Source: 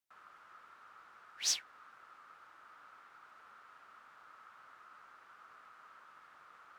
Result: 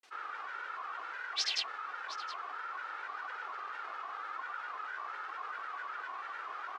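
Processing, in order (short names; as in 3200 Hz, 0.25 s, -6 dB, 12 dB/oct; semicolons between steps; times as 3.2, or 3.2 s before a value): bell 680 Hz +2 dB; comb 2.4 ms, depth 59%; grains, pitch spread up and down by 3 st; BPF 400–4500 Hz; on a send: echo 0.717 s -23.5 dB; on the sum: fast leveller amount 50%; gain +4 dB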